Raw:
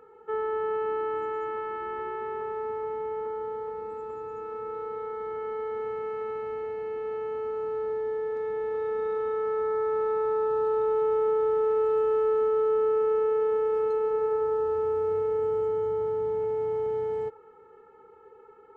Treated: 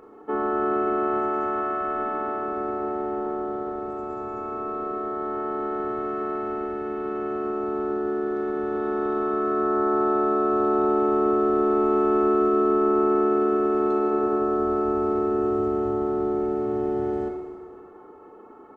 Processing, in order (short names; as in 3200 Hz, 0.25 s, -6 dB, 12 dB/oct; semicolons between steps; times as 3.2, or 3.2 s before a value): harmoniser -12 st -12 dB, -7 st -5 dB, -3 st -2 dB; Schroeder reverb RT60 1.7 s, combs from 26 ms, DRR 3 dB; gain +1 dB